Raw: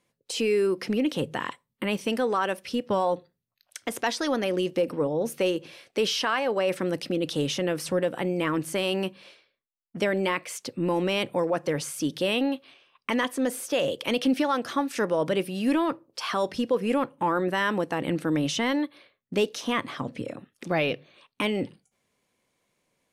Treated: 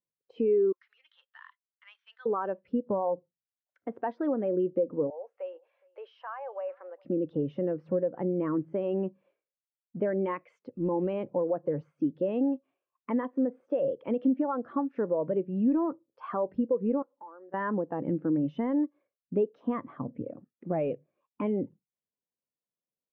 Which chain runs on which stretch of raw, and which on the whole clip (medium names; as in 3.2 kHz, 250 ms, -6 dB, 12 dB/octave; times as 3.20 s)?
0.72–2.26 s: median filter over 9 samples + high-pass 1.4 kHz 24 dB/octave + high-order bell 4.6 kHz +13 dB 1.2 oct
5.10–7.05 s: high-pass 620 Hz 24 dB/octave + compression 1.5:1, threshold -37 dBFS + delay 415 ms -19.5 dB
10.07–11.13 s: treble shelf 2.1 kHz +8.5 dB + transient shaper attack -8 dB, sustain -2 dB
17.02–17.54 s: compression 16:1, threshold -35 dBFS + high-pass 440 Hz
whole clip: low-pass 1.3 kHz 12 dB/octave; compression 4:1, threshold -26 dBFS; spectral contrast expander 1.5:1